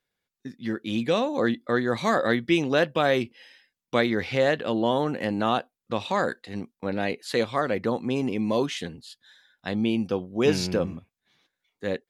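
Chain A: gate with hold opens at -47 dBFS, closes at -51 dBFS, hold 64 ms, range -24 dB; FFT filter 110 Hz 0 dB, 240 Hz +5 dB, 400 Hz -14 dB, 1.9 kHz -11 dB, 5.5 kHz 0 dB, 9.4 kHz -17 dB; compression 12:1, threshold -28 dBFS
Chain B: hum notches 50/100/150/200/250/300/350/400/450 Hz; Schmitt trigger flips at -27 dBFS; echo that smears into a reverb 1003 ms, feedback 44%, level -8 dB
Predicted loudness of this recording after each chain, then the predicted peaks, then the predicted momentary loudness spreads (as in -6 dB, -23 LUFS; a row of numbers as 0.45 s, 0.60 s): -34.0 LUFS, -30.0 LUFS; -20.5 dBFS, -17.5 dBFS; 7 LU, 9 LU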